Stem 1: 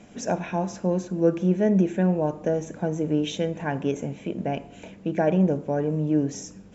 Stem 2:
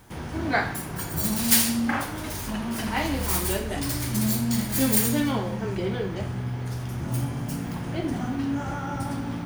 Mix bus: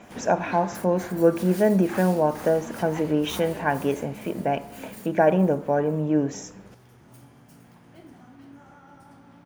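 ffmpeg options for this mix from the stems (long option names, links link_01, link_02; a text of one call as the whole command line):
ffmpeg -i stem1.wav -i stem2.wav -filter_complex "[0:a]equalizer=frequency=1100:width=0.56:gain=10,volume=-2dB,asplit=2[link_01][link_02];[1:a]lowshelf=frequency=180:gain=-10.5,asoftclip=type=hard:threshold=-20dB,adynamicequalizer=threshold=0.00562:dfrequency=2200:dqfactor=0.7:tfrequency=2200:tqfactor=0.7:attack=5:release=100:ratio=0.375:range=2.5:mode=cutabove:tftype=highshelf,volume=-4dB,afade=type=out:start_time=3.49:duration=0.22:silence=0.223872,asplit=2[link_03][link_04];[link_04]volume=-10.5dB[link_05];[link_02]apad=whole_len=417058[link_06];[link_03][link_06]sidechaincompress=threshold=-32dB:ratio=8:attack=16:release=101[link_07];[link_05]aecho=0:1:463|926|1389|1852|2315|2778|3241:1|0.47|0.221|0.104|0.0488|0.0229|0.0108[link_08];[link_01][link_07][link_08]amix=inputs=3:normalize=0" out.wav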